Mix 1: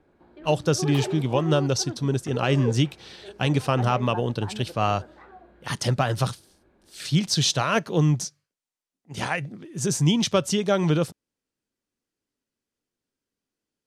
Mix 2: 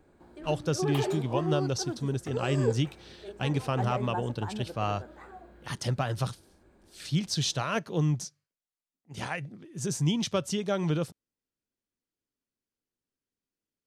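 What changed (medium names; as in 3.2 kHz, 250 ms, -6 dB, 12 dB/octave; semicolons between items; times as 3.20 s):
speech -7.5 dB; first sound: remove low-pass 4.2 kHz 24 dB/octave; master: add bass shelf 110 Hz +4.5 dB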